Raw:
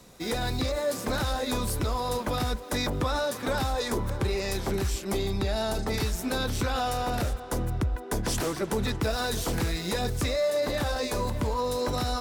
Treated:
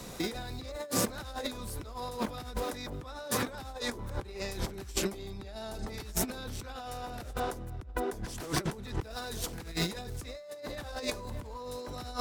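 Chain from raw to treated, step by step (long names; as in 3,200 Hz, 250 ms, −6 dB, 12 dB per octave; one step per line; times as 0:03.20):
compressor whose output falls as the input rises −35 dBFS, ratio −0.5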